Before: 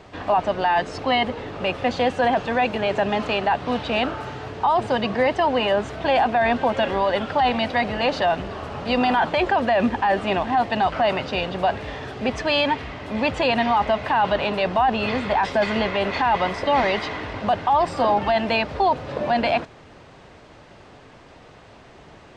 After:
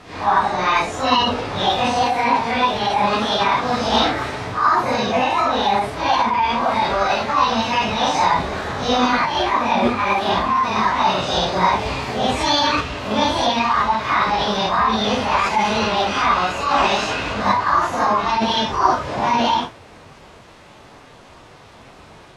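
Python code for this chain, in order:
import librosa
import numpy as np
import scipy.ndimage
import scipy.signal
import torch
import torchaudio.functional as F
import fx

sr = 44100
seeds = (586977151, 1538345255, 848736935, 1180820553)

y = fx.phase_scramble(x, sr, seeds[0], window_ms=200)
y = fx.rider(y, sr, range_db=5, speed_s=0.5)
y = fx.formant_shift(y, sr, semitones=5)
y = y * librosa.db_to_amplitude(3.5)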